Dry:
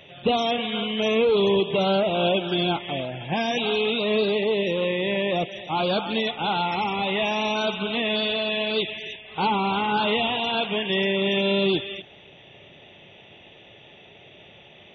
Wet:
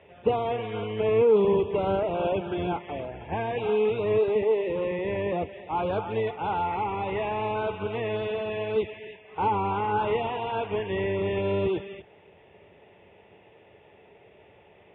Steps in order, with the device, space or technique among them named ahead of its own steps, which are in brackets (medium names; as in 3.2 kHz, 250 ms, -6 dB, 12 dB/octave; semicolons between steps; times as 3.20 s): sub-octave bass pedal (octave divider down 1 oct, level +1 dB; cabinet simulation 84–2300 Hz, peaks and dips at 140 Hz -8 dB, 240 Hz -5 dB, 440 Hz +8 dB, 930 Hz +6 dB); trim -6 dB